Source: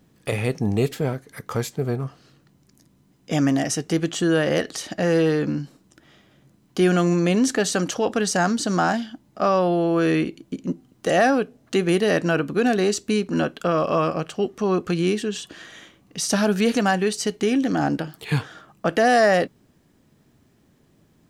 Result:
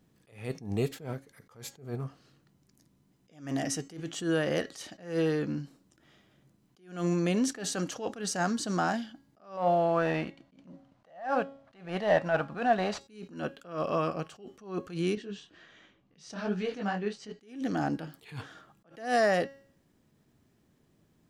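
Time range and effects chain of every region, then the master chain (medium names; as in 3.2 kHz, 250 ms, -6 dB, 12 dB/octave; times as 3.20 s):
9.57–13.01 s: CVSD coder 64 kbps + FFT filter 180 Hz 0 dB, 400 Hz -8 dB, 630 Hz +11 dB, 4.5 kHz -2 dB, 12 kHz -19 dB
15.15–17.41 s: block-companded coder 7-bit + distance through air 140 m + detune thickener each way 45 cents
whole clip: de-hum 274.7 Hz, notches 29; attacks held to a fixed rise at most 140 dB/s; trim -8 dB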